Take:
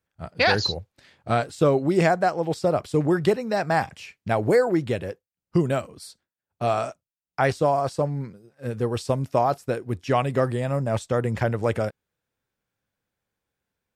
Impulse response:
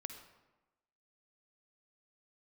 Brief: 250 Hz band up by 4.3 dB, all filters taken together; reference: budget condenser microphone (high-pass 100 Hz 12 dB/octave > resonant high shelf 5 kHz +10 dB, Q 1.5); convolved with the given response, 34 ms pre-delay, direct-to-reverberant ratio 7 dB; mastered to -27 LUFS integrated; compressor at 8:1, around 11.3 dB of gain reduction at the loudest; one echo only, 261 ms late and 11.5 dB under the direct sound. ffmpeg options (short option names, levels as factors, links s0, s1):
-filter_complex "[0:a]equalizer=f=250:t=o:g=6.5,acompressor=threshold=0.0631:ratio=8,aecho=1:1:261:0.266,asplit=2[s0][s1];[1:a]atrim=start_sample=2205,adelay=34[s2];[s1][s2]afir=irnorm=-1:irlink=0,volume=0.631[s3];[s0][s3]amix=inputs=2:normalize=0,highpass=100,highshelf=f=5000:t=q:w=1.5:g=10,volume=1.33"